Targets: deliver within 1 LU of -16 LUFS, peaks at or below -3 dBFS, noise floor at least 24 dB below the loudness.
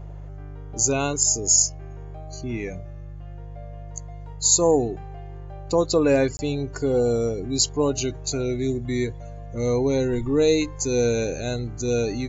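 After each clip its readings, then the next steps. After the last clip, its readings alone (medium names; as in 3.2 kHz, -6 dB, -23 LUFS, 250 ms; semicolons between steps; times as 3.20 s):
dropouts 1; longest dropout 20 ms; hum 50 Hz; highest harmonic 150 Hz; hum level -35 dBFS; loudness -22.5 LUFS; peak level -6.0 dBFS; loudness target -16.0 LUFS
-> interpolate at 6.37 s, 20 ms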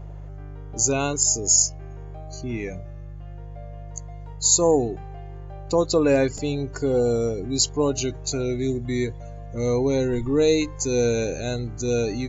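dropouts 0; hum 50 Hz; highest harmonic 150 Hz; hum level -35 dBFS
-> de-hum 50 Hz, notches 3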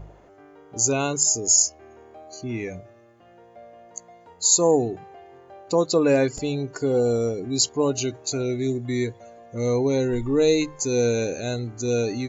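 hum not found; loudness -22.5 LUFS; peak level -6.0 dBFS; loudness target -16.0 LUFS
-> trim +6.5 dB; peak limiter -3 dBFS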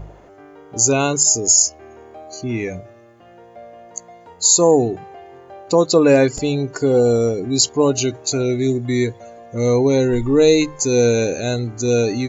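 loudness -16.5 LUFS; peak level -3.0 dBFS; noise floor -45 dBFS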